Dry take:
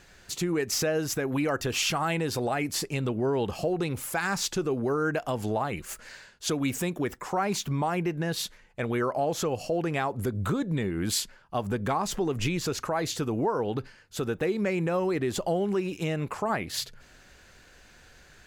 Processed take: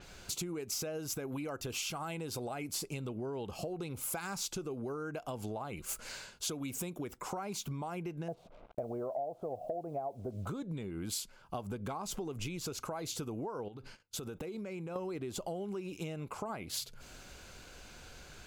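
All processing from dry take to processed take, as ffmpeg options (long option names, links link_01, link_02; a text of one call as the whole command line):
ffmpeg -i in.wav -filter_complex "[0:a]asettb=1/sr,asplit=3[link_01][link_02][link_03];[link_01]atrim=end=8.284[link_04];[link_02]atrim=start=8.28:end=10.47,asetpts=PTS-STARTPTS,afade=type=in:duration=0.004:curve=qsin,afade=type=out:start_time=2.186:duration=0.004:curve=qsin,lowpass=frequency=670:width_type=q:width=7,acrusher=bits=8:mix=0:aa=0.5[link_05];[link_03]atrim=start=10.466[link_06];[link_04][link_05]acrossfade=duration=0.004:curve1=hsin:curve2=qsin[link_07];[link_07][link_06]acrossfade=duration=0.004:curve1=qsin:curve2=hsin,asettb=1/sr,asplit=3[link_08][link_09][link_10];[link_08]atrim=end=13.684[link_11];[link_09]atrim=start=13.68:end=14.96,asetpts=PTS-STARTPTS,afade=type=in:duration=0.004:curve=qsin,afade=type=out:start_time=1.276:duration=0.004:curve=qsin,acompressor=threshold=-39dB:ratio=6:attack=3.2:release=140:knee=1:detection=peak,agate=range=-24dB:threshold=-54dB:ratio=16:release=100:detection=peak[link_12];[link_10]atrim=start=14.956[link_13];[link_11][link_12]acrossfade=duration=0.004:curve1=hsin:curve2=qsin[link_14];[link_14][link_13]acrossfade=duration=0.004:curve1=qsin:curve2=hsin,equalizer=frequency=1800:width=7.5:gain=-14.5,acompressor=threshold=-41dB:ratio=6,adynamicequalizer=threshold=0.00158:dfrequency=6300:dqfactor=0.7:tfrequency=6300:tqfactor=0.7:attack=5:release=100:ratio=0.375:range=2.5:mode=boostabove:tftype=highshelf,volume=3dB" out.wav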